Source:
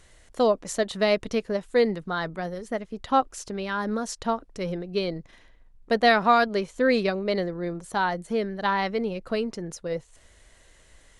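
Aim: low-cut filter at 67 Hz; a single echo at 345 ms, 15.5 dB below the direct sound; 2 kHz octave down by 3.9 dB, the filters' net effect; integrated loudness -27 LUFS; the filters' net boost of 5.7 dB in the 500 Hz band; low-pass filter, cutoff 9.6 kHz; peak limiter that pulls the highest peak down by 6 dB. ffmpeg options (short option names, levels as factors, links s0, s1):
-af "highpass=67,lowpass=9600,equalizer=f=500:t=o:g=7,equalizer=f=2000:t=o:g=-5.5,alimiter=limit=0.266:level=0:latency=1,aecho=1:1:345:0.168,volume=0.75"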